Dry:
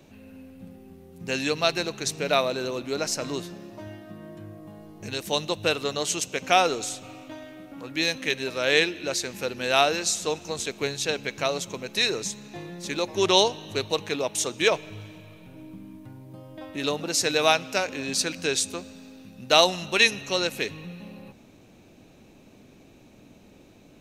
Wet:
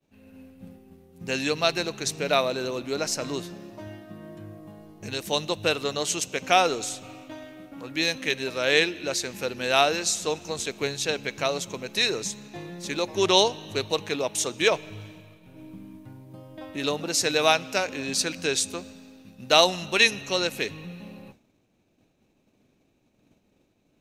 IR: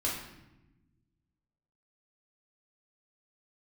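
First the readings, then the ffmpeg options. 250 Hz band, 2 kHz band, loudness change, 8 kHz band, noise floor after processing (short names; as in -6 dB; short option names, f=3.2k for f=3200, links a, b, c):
0.0 dB, 0.0 dB, 0.0 dB, 0.0 dB, -68 dBFS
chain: -af "agate=range=-33dB:threshold=-42dB:ratio=3:detection=peak"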